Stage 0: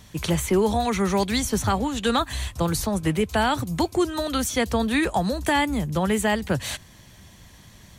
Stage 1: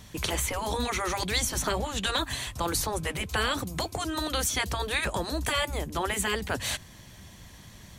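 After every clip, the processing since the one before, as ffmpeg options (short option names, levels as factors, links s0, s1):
-af "afftfilt=real='re*lt(hypot(re,im),0.355)':imag='im*lt(hypot(re,im),0.355)':win_size=1024:overlap=0.75"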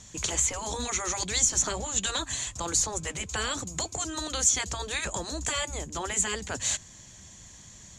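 -af "lowpass=f=7000:t=q:w=9.1,volume=0.596"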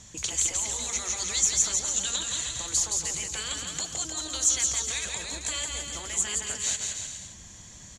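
-filter_complex "[0:a]acrossover=split=2300[s0][s1];[s0]acompressor=threshold=0.00794:ratio=6[s2];[s2][s1]amix=inputs=2:normalize=0,aecho=1:1:170|306|414.8|501.8|571.5:0.631|0.398|0.251|0.158|0.1"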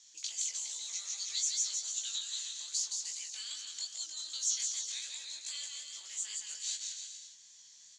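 -af "flanger=delay=17:depth=4.7:speed=2.5,bandpass=f=4700:t=q:w=2.2:csg=0"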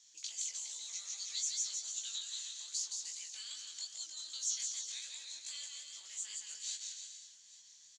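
-af "aecho=1:1:842:0.1,volume=0.631"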